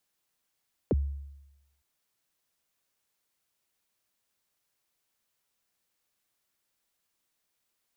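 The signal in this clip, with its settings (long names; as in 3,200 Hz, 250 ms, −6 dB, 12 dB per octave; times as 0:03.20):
synth kick length 0.91 s, from 580 Hz, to 70 Hz, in 31 ms, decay 0.97 s, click off, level −20 dB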